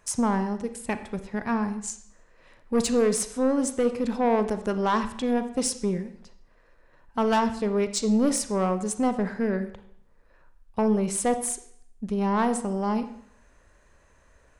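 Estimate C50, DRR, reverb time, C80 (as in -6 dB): 11.5 dB, 9.5 dB, 0.65 s, 14.5 dB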